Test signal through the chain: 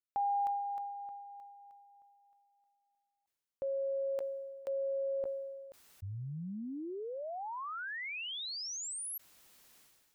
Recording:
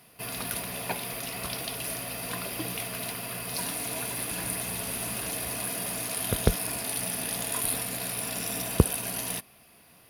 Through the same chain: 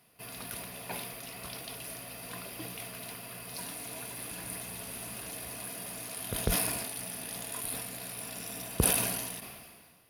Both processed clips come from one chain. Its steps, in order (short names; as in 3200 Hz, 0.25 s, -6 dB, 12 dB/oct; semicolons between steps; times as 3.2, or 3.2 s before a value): sustainer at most 34 dB/s; gain -8.5 dB